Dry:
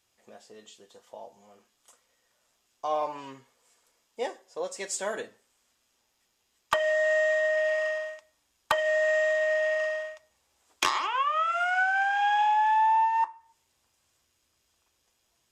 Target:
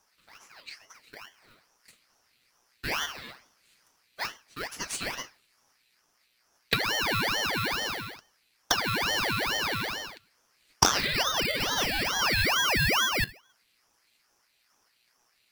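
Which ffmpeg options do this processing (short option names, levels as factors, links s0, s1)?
-filter_complex "[0:a]asplit=2[s0][s1];[s1]acrusher=samples=17:mix=1:aa=0.000001,volume=0.422[s2];[s0][s2]amix=inputs=2:normalize=0,equalizer=f=1700:t=o:w=0.23:g=-15,crystalizer=i=9.5:c=0,highshelf=f=4600:t=q:w=3:g=-9.5,aeval=exprs='val(0)*sin(2*PI*1600*n/s+1600*0.55/2.3*sin(2*PI*2.3*n/s))':c=same,volume=0.473"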